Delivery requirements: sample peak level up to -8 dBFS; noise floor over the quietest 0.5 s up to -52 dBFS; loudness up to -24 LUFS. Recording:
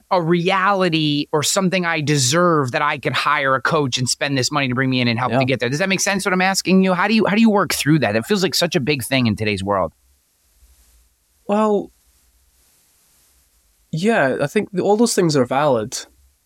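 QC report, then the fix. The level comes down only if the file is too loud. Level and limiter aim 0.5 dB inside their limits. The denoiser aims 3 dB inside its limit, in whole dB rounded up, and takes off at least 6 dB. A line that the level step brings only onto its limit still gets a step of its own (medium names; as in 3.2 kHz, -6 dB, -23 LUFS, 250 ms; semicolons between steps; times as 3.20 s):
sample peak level -5.5 dBFS: fail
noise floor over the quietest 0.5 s -60 dBFS: pass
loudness -17.5 LUFS: fail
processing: trim -7 dB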